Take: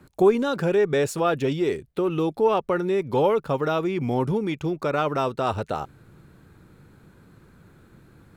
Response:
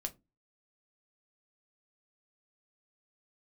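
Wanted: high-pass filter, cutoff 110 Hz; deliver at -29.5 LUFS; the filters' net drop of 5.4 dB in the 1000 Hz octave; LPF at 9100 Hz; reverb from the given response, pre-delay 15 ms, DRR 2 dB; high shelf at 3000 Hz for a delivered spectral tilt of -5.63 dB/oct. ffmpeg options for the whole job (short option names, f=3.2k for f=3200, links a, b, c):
-filter_complex "[0:a]highpass=110,lowpass=9.1k,equalizer=f=1k:t=o:g=-8,highshelf=f=3k:g=4,asplit=2[a][b];[1:a]atrim=start_sample=2205,adelay=15[c];[b][c]afir=irnorm=-1:irlink=0,volume=-1dB[d];[a][d]amix=inputs=2:normalize=0,volume=-6dB"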